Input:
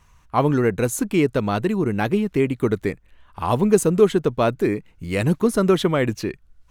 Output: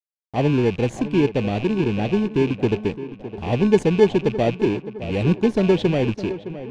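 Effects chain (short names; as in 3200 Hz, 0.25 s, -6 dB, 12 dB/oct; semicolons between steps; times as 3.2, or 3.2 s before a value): rattling part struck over -32 dBFS, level -18 dBFS; band shelf 1400 Hz -14 dB 1.3 oct; in parallel at -8 dB: sample-and-hold 34×; on the sum: crossover distortion -47 dBFS; requantised 8-bit, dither none; air absorption 140 m; on a send: tape echo 0.612 s, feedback 55%, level -12 dB, low-pass 2000 Hz; on the sum: gain -1.5 dB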